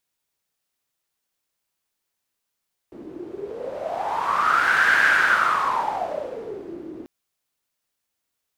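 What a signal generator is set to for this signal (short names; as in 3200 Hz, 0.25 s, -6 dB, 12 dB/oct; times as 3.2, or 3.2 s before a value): wind-like swept noise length 4.14 s, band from 320 Hz, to 1600 Hz, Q 10, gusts 1, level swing 20 dB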